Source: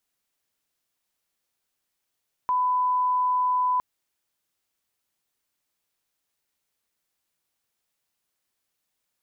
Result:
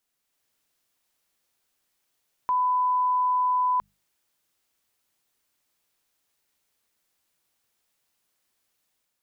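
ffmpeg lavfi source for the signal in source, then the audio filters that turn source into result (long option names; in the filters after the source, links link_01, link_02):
-f lavfi -i "sine=frequency=1000:duration=1.31:sample_rate=44100,volume=-1.94dB"
-af "bandreject=frequency=50:width_type=h:width=6,bandreject=frequency=100:width_type=h:width=6,bandreject=frequency=150:width_type=h:width=6,bandreject=frequency=200:width_type=h:width=6,dynaudnorm=framelen=130:gausssize=5:maxgain=4.5dB,alimiter=limit=-20dB:level=0:latency=1:release=85"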